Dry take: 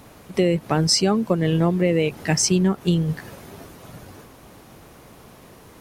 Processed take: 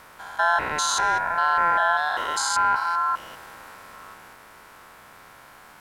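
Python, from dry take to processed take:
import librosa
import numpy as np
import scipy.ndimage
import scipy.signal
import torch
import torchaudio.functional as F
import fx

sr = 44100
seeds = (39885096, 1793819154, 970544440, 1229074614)

y = fx.spec_steps(x, sr, hold_ms=200)
y = y * np.sin(2.0 * np.pi * 1200.0 * np.arange(len(y)) / sr)
y = y * 10.0 ** (2.5 / 20.0)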